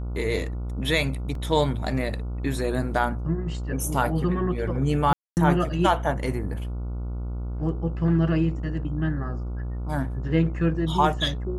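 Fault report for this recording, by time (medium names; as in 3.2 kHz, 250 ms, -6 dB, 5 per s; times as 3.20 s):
buzz 60 Hz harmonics 24 -30 dBFS
1.35 s: dropout 2.8 ms
5.13–5.37 s: dropout 239 ms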